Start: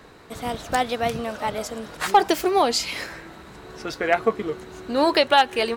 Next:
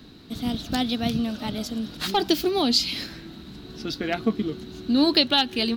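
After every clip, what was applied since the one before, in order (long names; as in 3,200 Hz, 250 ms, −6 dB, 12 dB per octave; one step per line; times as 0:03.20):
octave-band graphic EQ 250/500/1,000/2,000/4,000/8,000 Hz +9/−11/−10/−9/+9/−11 dB
level +2 dB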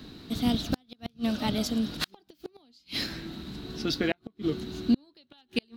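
gate with flip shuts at −15 dBFS, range −40 dB
level +1.5 dB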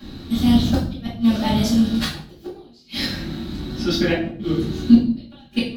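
convolution reverb RT60 0.55 s, pre-delay 4 ms, DRR −8.5 dB
level −3.5 dB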